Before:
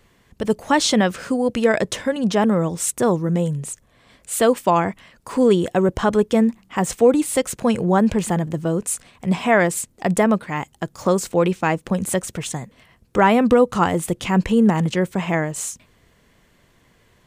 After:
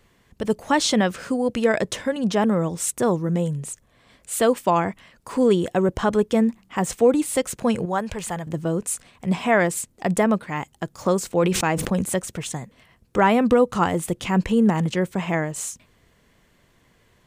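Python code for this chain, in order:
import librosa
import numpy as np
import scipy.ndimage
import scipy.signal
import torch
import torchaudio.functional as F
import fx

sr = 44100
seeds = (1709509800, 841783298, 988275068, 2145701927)

y = fx.peak_eq(x, sr, hz=250.0, db=-13.0, octaves=1.6, at=(7.85, 8.47))
y = fx.sustainer(y, sr, db_per_s=45.0, at=(11.4, 12.02))
y = y * librosa.db_to_amplitude(-2.5)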